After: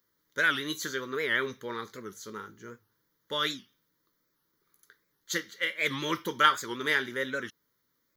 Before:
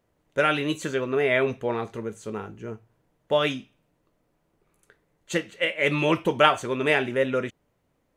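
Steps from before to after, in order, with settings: RIAA curve recording; static phaser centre 2.6 kHz, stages 6; warped record 78 rpm, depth 160 cents; trim -1.5 dB

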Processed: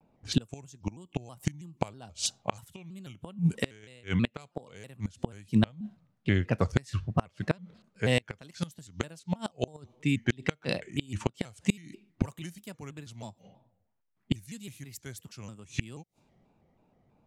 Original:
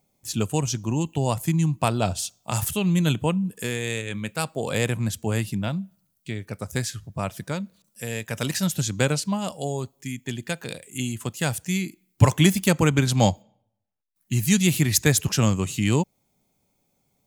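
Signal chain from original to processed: level-controlled noise filter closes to 1.6 kHz, open at -19.5 dBFS; inverted gate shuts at -17 dBFS, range -30 dB; vibrato with a chosen wave square 3.1 Hz, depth 160 cents; trim +6 dB

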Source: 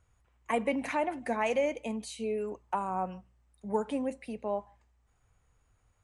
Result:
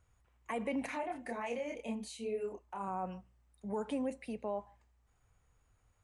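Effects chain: peak limiter -25.5 dBFS, peak gain reduction 9 dB; 0.86–2.88 s: chorus voices 4, 1.3 Hz, delay 28 ms, depth 3 ms; trim -2 dB

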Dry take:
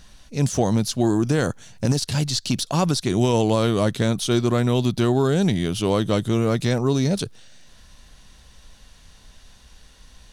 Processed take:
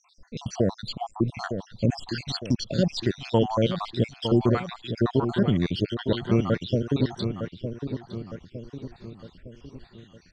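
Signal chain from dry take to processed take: random holes in the spectrogram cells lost 69%; low-pass 5.1 kHz 24 dB/octave; filtered feedback delay 909 ms, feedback 49%, low-pass 2 kHz, level -8 dB

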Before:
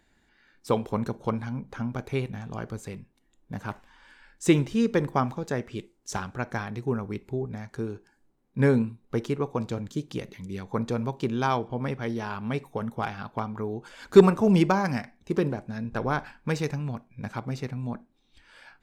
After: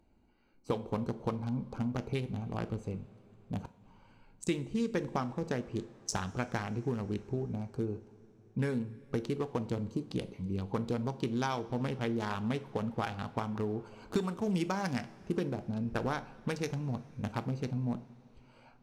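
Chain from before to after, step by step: local Wiener filter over 25 samples; peaking EQ 8.2 kHz +9.5 dB 2.6 oct; compression 8:1, threshold -29 dBFS, peak gain reduction 20.5 dB; 3.59–4.47 s: inverted gate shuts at -30 dBFS, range -39 dB; two-slope reverb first 0.38 s, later 4.5 s, from -18 dB, DRR 11 dB

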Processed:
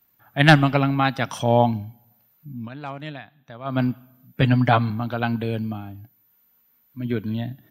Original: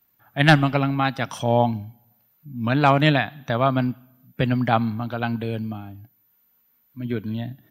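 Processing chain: 2.51–3.82 s: dip -18.5 dB, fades 0.18 s; 4.41–4.90 s: comb 6.9 ms, depth 71%; trim +1.5 dB

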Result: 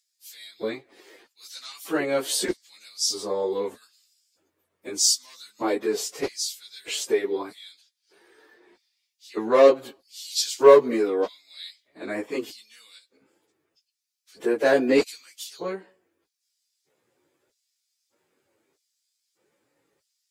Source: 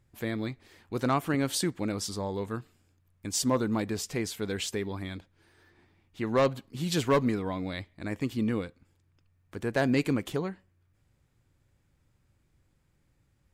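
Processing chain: LFO high-pass square 1.2 Hz 410–4900 Hz; plain phase-vocoder stretch 1.5×; trim +7 dB

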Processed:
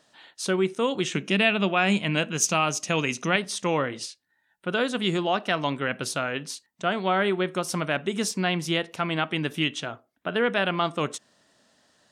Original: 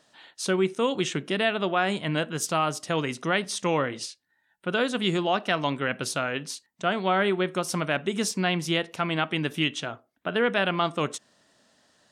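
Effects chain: 1.13–3.36 s: graphic EQ with 31 bands 200 Hz +8 dB, 2.5 kHz +11 dB, 6.3 kHz +12 dB

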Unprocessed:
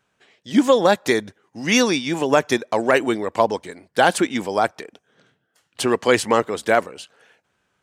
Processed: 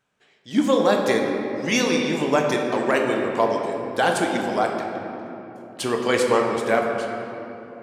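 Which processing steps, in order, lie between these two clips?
simulated room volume 190 m³, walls hard, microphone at 0.42 m; trim -5 dB

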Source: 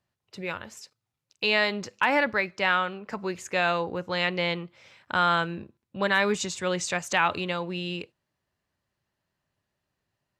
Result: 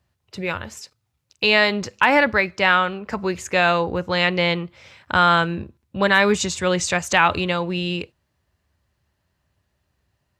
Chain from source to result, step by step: peaking EQ 68 Hz +14.5 dB 0.94 oct; trim +7 dB

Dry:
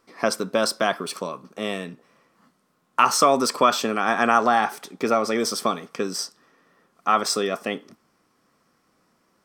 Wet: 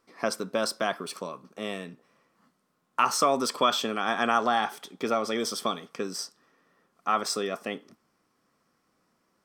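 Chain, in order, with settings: 3.41–5.92 s: peaking EQ 3.3 kHz +9.5 dB 0.21 oct; trim -6 dB

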